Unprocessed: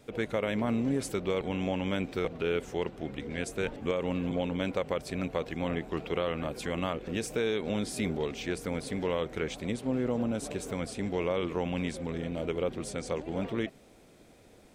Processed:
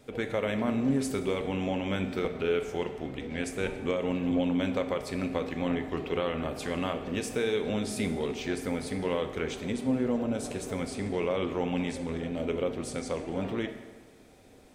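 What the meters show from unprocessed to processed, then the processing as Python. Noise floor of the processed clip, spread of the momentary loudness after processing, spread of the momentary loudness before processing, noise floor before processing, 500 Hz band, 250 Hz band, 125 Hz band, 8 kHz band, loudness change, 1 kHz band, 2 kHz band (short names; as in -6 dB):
-54 dBFS, 6 LU, 5 LU, -57 dBFS, +1.0 dB, +2.5 dB, 0.0 dB, +1.0 dB, +1.5 dB, +1.0 dB, +1.0 dB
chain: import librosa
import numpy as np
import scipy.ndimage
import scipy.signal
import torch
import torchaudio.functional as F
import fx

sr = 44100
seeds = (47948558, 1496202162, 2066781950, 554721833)

y = fx.rev_fdn(x, sr, rt60_s=1.4, lf_ratio=0.9, hf_ratio=0.7, size_ms=23.0, drr_db=6.0)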